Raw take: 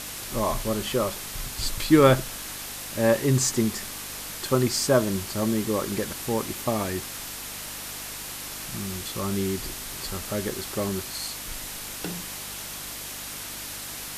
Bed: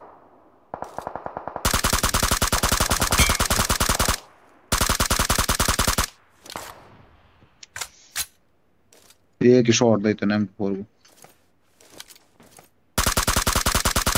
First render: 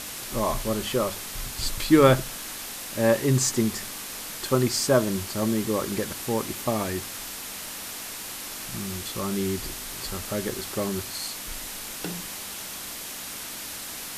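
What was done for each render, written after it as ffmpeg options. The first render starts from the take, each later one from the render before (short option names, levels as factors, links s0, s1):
-af "bandreject=f=50:t=h:w=4,bandreject=f=100:t=h:w=4,bandreject=f=150:t=h:w=4"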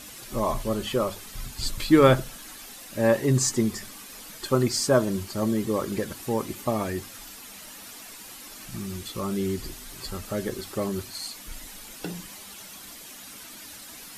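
-af "afftdn=nr=10:nf=-37"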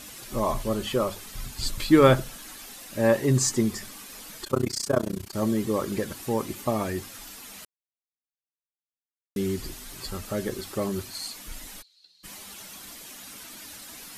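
-filter_complex "[0:a]asettb=1/sr,asplit=3[s0][s1][s2];[s0]atrim=end=4.444[s3];[s1]atrim=start=4.44:end=5.35,asetpts=PTS-STARTPTS,afade=t=in:d=0.004:c=qsin,afade=t=out:st=0.906:d=0.004:c=qsin,tremolo=f=30:d=0.974[s4];[s2]atrim=start=5.346[s5];[s3][s4]acrossfade=d=0.004:c1=hsin:c2=qsin[s6];[s6][s5]acrossfade=d=0.004:c1=qsin:c2=hsin,asplit=3[s7][s8][s9];[s7]afade=t=out:st=11.81:d=0.02[s10];[s8]bandpass=f=4200:t=q:w=19,afade=t=in:st=11.81:d=0.02,afade=t=out:st=12.23:d=0.02[s11];[s9]afade=t=in:st=12.23:d=0.02[s12];[s10][s11][s12]amix=inputs=3:normalize=0,asplit=3[s13][s14][s15];[s13]atrim=end=7.65,asetpts=PTS-STARTPTS,afade=t=out:st=7.646:d=0.004:c=hsin[s16];[s14]atrim=start=7.65:end=9.36,asetpts=PTS-STARTPTS,volume=0[s17];[s15]atrim=start=9.36,asetpts=PTS-STARTPTS,afade=t=in:d=0.004:c=hsin[s18];[s16][s17][s18]concat=n=3:v=0:a=1"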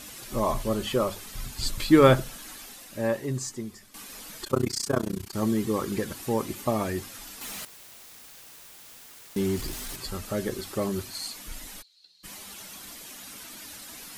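-filter_complex "[0:a]asettb=1/sr,asplit=3[s0][s1][s2];[s0]atrim=end=4.614[s3];[s1]atrim=start=4.61:end=6.07,asetpts=PTS-STARTPTS,afade=t=in:d=0.004:c=qsin,afade=t=out:st=1.456:d=0.004:c=qsin,equalizer=f=590:t=o:w=0.23:g=-9[s4];[s2]atrim=start=6.066[s5];[s3][s4]acrossfade=d=0.004:c1=hsin:c2=qsin[s6];[s6][s5]acrossfade=d=0.004:c1=qsin:c2=hsin,asettb=1/sr,asplit=3[s7][s8][s9];[s7]atrim=end=7.414[s10];[s8]atrim=start=7.41:end=9.96,asetpts=PTS-STARTPTS,afade=t=in:d=0.004:c=qsin,afade=t=out:st=2.546:d=0.004:c=qsin,aeval=exprs='val(0)+0.5*0.015*sgn(val(0))':c=same[s11];[s9]atrim=start=9.956[s12];[s10][s11]acrossfade=d=0.004:c1=hsin:c2=qsin[s13];[s13][s12]acrossfade=d=0.004:c1=qsin:c2=hsin,asplit=2[s14][s15];[s14]atrim=end=3.94,asetpts=PTS-STARTPTS,afade=t=out:st=2.55:d=1.39:c=qua:silence=0.211349[s16];[s15]atrim=start=3.94,asetpts=PTS-STARTPTS,afade=t=in:d=0.004:c=hsin:silence=0.211349[s17];[s16][s17]concat=n=2:v=0:a=1"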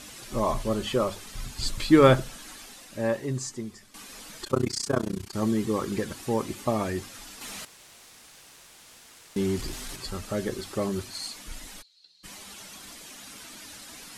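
-af "lowpass=10000"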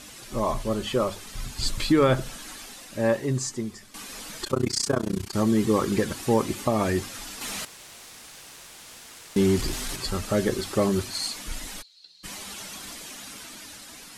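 -af "dynaudnorm=f=300:g=9:m=2,alimiter=limit=0.282:level=0:latency=1:release=212"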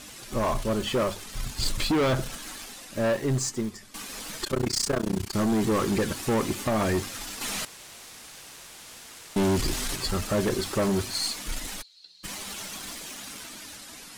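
-filter_complex "[0:a]asplit=2[s0][s1];[s1]acrusher=bits=3:dc=4:mix=0:aa=0.000001,volume=0.355[s2];[s0][s2]amix=inputs=2:normalize=0,volume=10.6,asoftclip=hard,volume=0.0944"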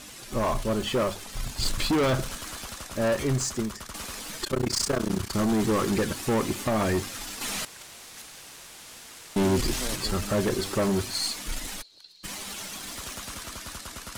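-filter_complex "[1:a]volume=0.0944[s0];[0:a][s0]amix=inputs=2:normalize=0"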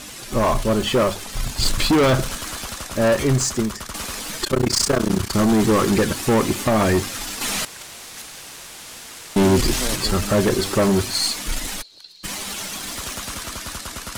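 -af "volume=2.37"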